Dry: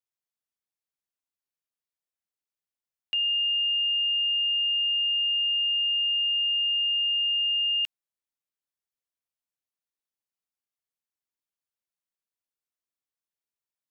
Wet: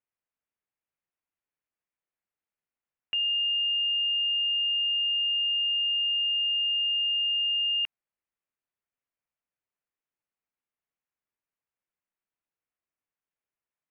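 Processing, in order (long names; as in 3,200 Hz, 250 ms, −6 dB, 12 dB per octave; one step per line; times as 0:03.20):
Butterworth low-pass 2,700 Hz
level +3 dB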